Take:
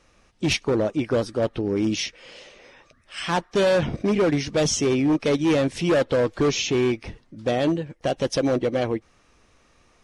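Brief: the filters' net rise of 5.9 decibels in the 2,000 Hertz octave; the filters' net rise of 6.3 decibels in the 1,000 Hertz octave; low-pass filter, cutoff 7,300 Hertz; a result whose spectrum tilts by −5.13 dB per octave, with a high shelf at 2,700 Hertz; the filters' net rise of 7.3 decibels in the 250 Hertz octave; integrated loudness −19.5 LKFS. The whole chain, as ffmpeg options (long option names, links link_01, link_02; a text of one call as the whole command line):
ffmpeg -i in.wav -af "lowpass=7300,equalizer=frequency=250:width_type=o:gain=9,equalizer=frequency=1000:width_type=o:gain=6,equalizer=frequency=2000:width_type=o:gain=3.5,highshelf=frequency=2700:gain=5,volume=-1.5dB" out.wav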